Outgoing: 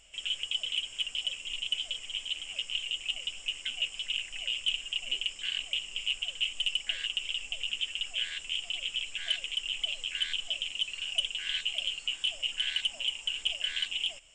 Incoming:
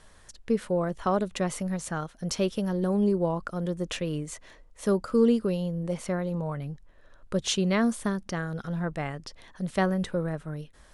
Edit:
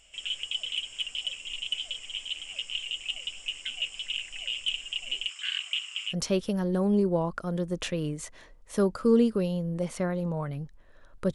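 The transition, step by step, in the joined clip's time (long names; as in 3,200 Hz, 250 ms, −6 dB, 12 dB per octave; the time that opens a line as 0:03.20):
outgoing
0:05.29–0:06.15: high-pass with resonance 1,300 Hz, resonance Q 2.5
0:06.10: continue with incoming from 0:02.19, crossfade 0.10 s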